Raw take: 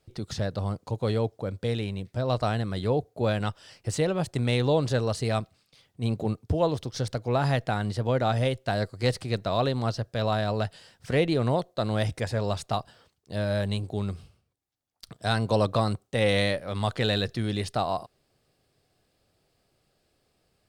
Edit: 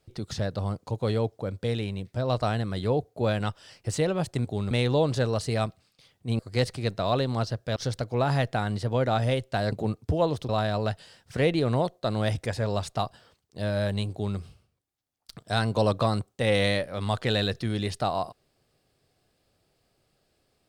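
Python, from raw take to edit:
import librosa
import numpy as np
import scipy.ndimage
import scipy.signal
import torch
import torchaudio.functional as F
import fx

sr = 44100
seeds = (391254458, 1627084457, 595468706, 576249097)

y = fx.edit(x, sr, fx.swap(start_s=6.13, length_s=0.77, other_s=8.86, other_length_s=1.37),
    fx.duplicate(start_s=13.86, length_s=0.26, to_s=4.45), tone=tone)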